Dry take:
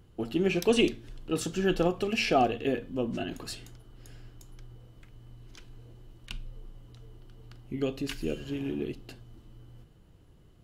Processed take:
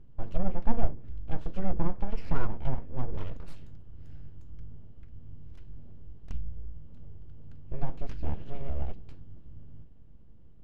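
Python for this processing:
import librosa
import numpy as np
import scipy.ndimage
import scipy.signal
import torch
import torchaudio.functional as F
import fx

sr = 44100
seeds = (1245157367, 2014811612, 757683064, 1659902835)

y = fx.env_lowpass_down(x, sr, base_hz=780.0, full_db=-22.5)
y = np.abs(y)
y = fx.riaa(y, sr, side='playback')
y = F.gain(torch.from_numpy(y), -8.0).numpy()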